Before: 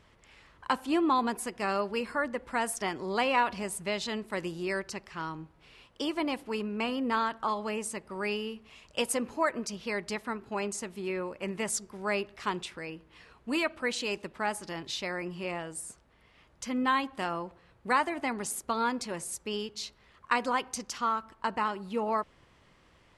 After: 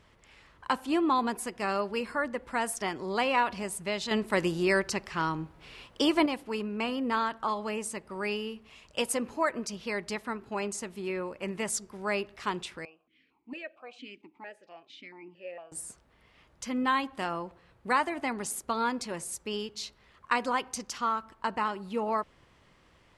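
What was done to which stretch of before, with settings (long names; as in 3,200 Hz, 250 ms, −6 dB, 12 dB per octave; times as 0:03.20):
0:04.11–0:06.26: clip gain +7 dB
0:12.85–0:15.72: formant filter that steps through the vowels 4.4 Hz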